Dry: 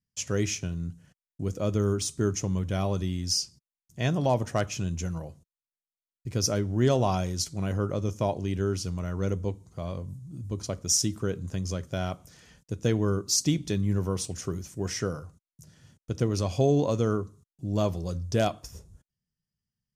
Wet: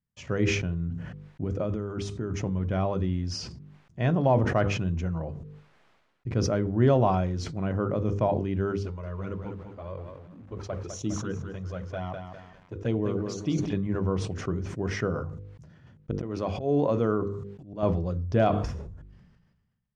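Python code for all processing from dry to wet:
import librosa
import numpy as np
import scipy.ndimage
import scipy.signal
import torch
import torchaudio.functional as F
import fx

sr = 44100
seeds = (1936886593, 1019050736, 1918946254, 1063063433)

y = fx.chain(x, sr, fx.over_compress(threshold_db=-30.0, ratio=-1.0),
    fx.notch(hz=1100.0, q=28.0), at=(1.43, 2.62))
y = fx.chain(y, sr, fx.low_shelf(hz=290.0, db=-6.0),
    fx.env_flanger(rest_ms=6.0, full_db=-23.5),
    fx.echo_crushed(ms=202, feedback_pct=35, bits=9, wet_db=-7.0), at=(8.83, 13.73))
y = fx.chain(y, sr, fx.low_shelf(hz=120.0, db=-11.5),
    fx.auto_swell(attack_ms=158.0), at=(16.11, 17.83))
y = scipy.signal.sosfilt(scipy.signal.butter(2, 1900.0, 'lowpass', fs=sr, output='sos'), y)
y = fx.hum_notches(y, sr, base_hz=50, count=10)
y = fx.sustainer(y, sr, db_per_s=44.0)
y = y * librosa.db_to_amplitude(2.5)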